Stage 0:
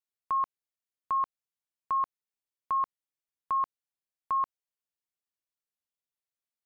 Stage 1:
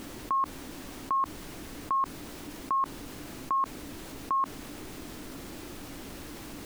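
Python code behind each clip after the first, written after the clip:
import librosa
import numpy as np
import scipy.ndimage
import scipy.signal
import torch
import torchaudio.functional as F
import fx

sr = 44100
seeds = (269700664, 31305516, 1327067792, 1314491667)

y = fx.dmg_noise_colour(x, sr, seeds[0], colour='pink', level_db=-61.0)
y = fx.peak_eq(y, sr, hz=290.0, db=12.5, octaves=0.74)
y = fx.env_flatten(y, sr, amount_pct=50)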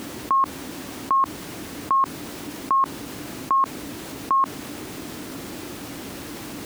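y = scipy.signal.sosfilt(scipy.signal.butter(2, 85.0, 'highpass', fs=sr, output='sos'), x)
y = F.gain(torch.from_numpy(y), 8.0).numpy()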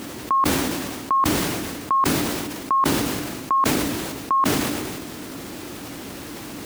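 y = fx.sustainer(x, sr, db_per_s=27.0)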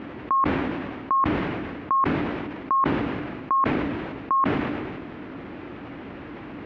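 y = scipy.signal.sosfilt(scipy.signal.butter(4, 2500.0, 'lowpass', fs=sr, output='sos'), x)
y = F.gain(torch.from_numpy(y), -2.0).numpy()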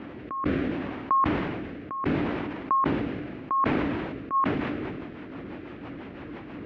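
y = fx.rotary_switch(x, sr, hz=0.7, then_hz=6.0, switch_at_s=3.93)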